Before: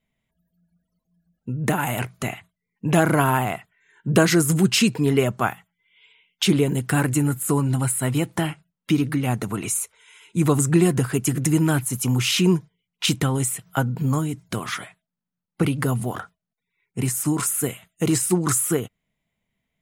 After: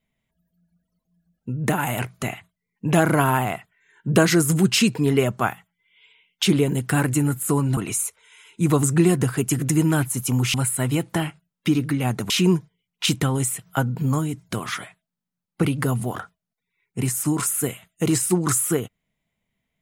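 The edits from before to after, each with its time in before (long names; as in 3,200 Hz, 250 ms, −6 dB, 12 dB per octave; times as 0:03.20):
0:07.77–0:09.53: move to 0:12.30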